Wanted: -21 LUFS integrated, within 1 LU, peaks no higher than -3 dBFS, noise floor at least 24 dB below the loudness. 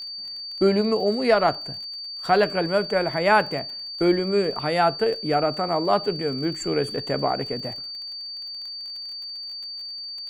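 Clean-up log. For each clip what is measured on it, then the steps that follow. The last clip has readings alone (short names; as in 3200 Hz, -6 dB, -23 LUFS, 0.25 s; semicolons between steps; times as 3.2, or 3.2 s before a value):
ticks 29/s; steady tone 4600 Hz; tone level -32 dBFS; loudness -24.0 LUFS; peak -6.5 dBFS; loudness target -21.0 LUFS
-> de-click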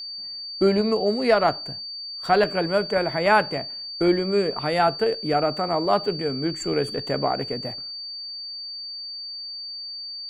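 ticks 0/s; steady tone 4600 Hz; tone level -32 dBFS
-> notch 4600 Hz, Q 30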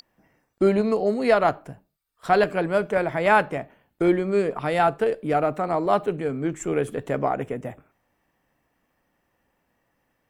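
steady tone none; loudness -23.0 LUFS; peak -7.0 dBFS; loudness target -21.0 LUFS
-> gain +2 dB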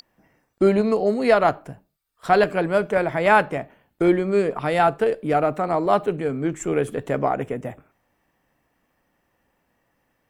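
loudness -21.0 LUFS; peak -5.0 dBFS; noise floor -71 dBFS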